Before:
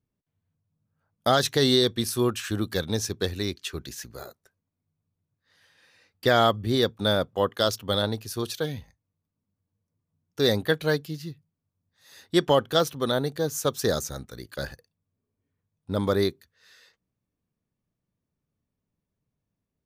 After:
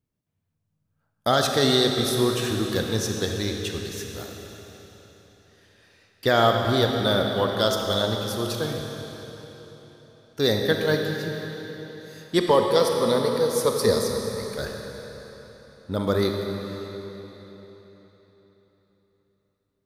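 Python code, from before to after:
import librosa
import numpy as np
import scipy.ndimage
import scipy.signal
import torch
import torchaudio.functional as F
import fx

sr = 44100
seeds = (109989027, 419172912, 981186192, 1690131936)

y = fx.ripple_eq(x, sr, per_octave=0.9, db=12, at=(12.38, 14.55))
y = fx.rev_freeverb(y, sr, rt60_s=4.0, hf_ratio=0.95, predelay_ms=0, drr_db=2.0)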